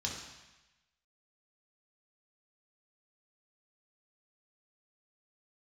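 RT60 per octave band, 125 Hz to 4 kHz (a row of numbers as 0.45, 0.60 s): 1.1, 0.95, 0.95, 1.1, 1.2, 1.1 s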